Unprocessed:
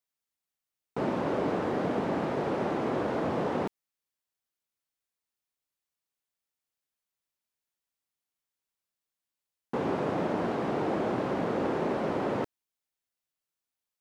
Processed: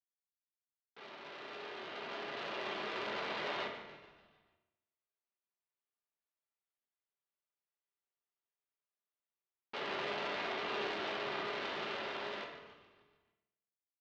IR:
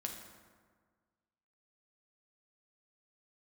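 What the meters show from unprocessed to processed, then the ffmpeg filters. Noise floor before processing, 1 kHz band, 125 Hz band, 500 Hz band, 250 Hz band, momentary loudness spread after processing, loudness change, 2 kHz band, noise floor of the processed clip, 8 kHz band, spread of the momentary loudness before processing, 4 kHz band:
below −85 dBFS, −8.5 dB, −22.0 dB, −12.5 dB, −19.0 dB, 12 LU, −9.5 dB, −0.5 dB, below −85 dBFS, can't be measured, 4 LU, +5.5 dB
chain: -filter_complex "[0:a]adynamicsmooth=sensitivity=1.5:basefreq=1000,aeval=exprs='(tanh(89.1*val(0)+0.6)-tanh(0.6))/89.1':channel_layout=same,lowpass=frequency=4100:width=0.5412,lowpass=frequency=4100:width=1.3066,aderivative,dynaudnorm=framelen=340:gausssize=13:maxgain=14dB,asplit=7[link_01][link_02][link_03][link_04][link_05][link_06][link_07];[link_02]adelay=145,afreqshift=-46,volume=-12.5dB[link_08];[link_03]adelay=290,afreqshift=-92,volume=-17.7dB[link_09];[link_04]adelay=435,afreqshift=-138,volume=-22.9dB[link_10];[link_05]adelay=580,afreqshift=-184,volume=-28.1dB[link_11];[link_06]adelay=725,afreqshift=-230,volume=-33.3dB[link_12];[link_07]adelay=870,afreqshift=-276,volume=-38.5dB[link_13];[link_01][link_08][link_09][link_10][link_11][link_12][link_13]amix=inputs=7:normalize=0[link_14];[1:a]atrim=start_sample=2205,asetrate=83790,aresample=44100[link_15];[link_14][link_15]afir=irnorm=-1:irlink=0,volume=13.5dB"

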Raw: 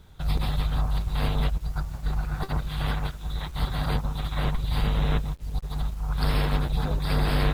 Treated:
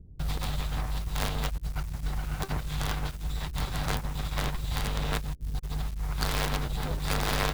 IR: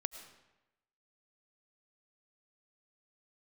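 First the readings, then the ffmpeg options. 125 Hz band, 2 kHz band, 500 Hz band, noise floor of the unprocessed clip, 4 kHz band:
−5.5 dB, 0.0 dB, −3.0 dB, −39 dBFS, 0.0 dB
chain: -filter_complex "[0:a]acrossover=split=410[link_01][link_02];[link_01]acompressor=threshold=-31dB:ratio=6[link_03];[link_02]acrusher=bits=5:dc=4:mix=0:aa=0.000001[link_04];[link_03][link_04]amix=inputs=2:normalize=0,volume=2.5dB"

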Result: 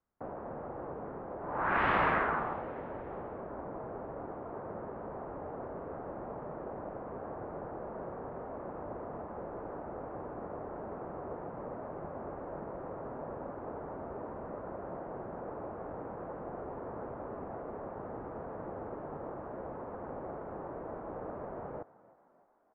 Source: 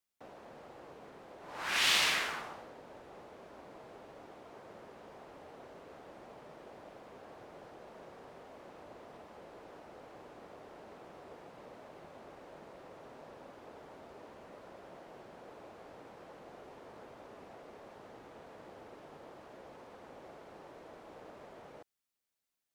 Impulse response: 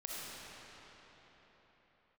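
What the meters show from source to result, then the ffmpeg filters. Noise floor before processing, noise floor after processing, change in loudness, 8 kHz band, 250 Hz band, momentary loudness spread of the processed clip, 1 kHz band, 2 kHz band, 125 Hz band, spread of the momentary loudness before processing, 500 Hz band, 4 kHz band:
−56 dBFS, −46 dBFS, −9.0 dB, below −35 dB, +11.5 dB, 5 LU, +9.5 dB, 0.0 dB, +14.0 dB, 22 LU, +10.5 dB, below −15 dB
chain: -filter_complex "[0:a]lowpass=frequency=1400:width=0.5412,lowpass=frequency=1400:width=1.3066,lowshelf=frequency=140:gain=7,asplit=2[link_01][link_02];[link_02]asplit=4[link_03][link_04][link_05][link_06];[link_03]adelay=306,afreqshift=52,volume=-21dB[link_07];[link_04]adelay=612,afreqshift=104,volume=-26dB[link_08];[link_05]adelay=918,afreqshift=156,volume=-31.1dB[link_09];[link_06]adelay=1224,afreqshift=208,volume=-36.1dB[link_10];[link_07][link_08][link_09][link_10]amix=inputs=4:normalize=0[link_11];[link_01][link_11]amix=inputs=2:normalize=0,volume=10dB"

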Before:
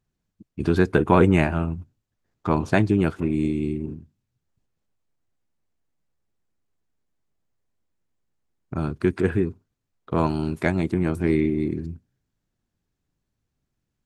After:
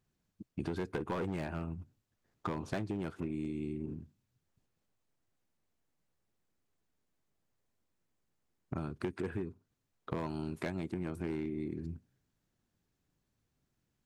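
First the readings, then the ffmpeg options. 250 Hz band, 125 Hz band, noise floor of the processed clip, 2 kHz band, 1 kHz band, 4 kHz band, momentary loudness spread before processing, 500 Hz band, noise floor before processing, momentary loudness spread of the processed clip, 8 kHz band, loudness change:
−15.5 dB, −16.0 dB, −83 dBFS, −17.0 dB, −16.0 dB, −13.0 dB, 14 LU, −16.0 dB, −80 dBFS, 10 LU, can't be measured, −16.5 dB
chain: -af "asoftclip=type=hard:threshold=-14dB,lowshelf=frequency=70:gain=-7,acompressor=threshold=-35dB:ratio=6"

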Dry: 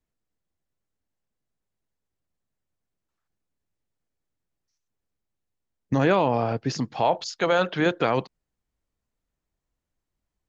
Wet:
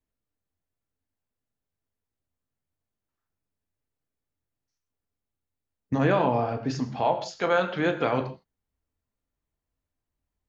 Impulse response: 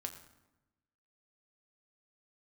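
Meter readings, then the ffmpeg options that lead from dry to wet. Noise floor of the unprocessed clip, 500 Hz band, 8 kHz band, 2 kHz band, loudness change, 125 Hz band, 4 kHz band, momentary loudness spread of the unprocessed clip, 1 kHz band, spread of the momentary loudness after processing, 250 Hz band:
−84 dBFS, −2.0 dB, can't be measured, −2.0 dB, −2.0 dB, −1.5 dB, −5.0 dB, 7 LU, −1.5 dB, 8 LU, −1.5 dB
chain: -filter_complex "[0:a]equalizer=frequency=5700:width_type=o:width=1.7:gain=-4[link_01];[1:a]atrim=start_sample=2205,afade=type=out:start_time=0.22:duration=0.01,atrim=end_sample=10143[link_02];[link_01][link_02]afir=irnorm=-1:irlink=0"

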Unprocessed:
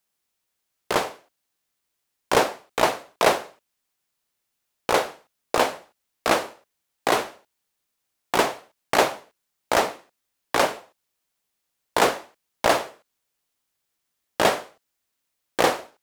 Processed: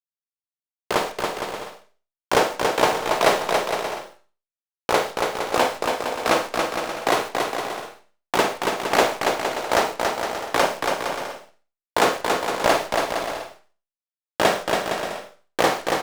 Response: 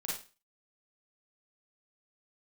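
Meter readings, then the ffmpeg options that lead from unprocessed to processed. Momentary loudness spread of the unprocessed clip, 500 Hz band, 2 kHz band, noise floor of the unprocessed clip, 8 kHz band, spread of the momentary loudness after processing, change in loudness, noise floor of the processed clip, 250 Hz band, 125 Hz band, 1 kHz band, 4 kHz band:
13 LU, +3.0 dB, +3.0 dB, −79 dBFS, +2.0 dB, 11 LU, +1.0 dB, below −85 dBFS, +3.0 dB, +3.0 dB, +3.0 dB, +3.0 dB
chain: -filter_complex "[0:a]acrusher=bits=7:dc=4:mix=0:aa=0.000001,aecho=1:1:280|462|580.3|657.2|707.2:0.631|0.398|0.251|0.158|0.1,asplit=2[link_01][link_02];[1:a]atrim=start_sample=2205,lowpass=8600[link_03];[link_02][link_03]afir=irnorm=-1:irlink=0,volume=-7.5dB[link_04];[link_01][link_04]amix=inputs=2:normalize=0,volume=-1.5dB"

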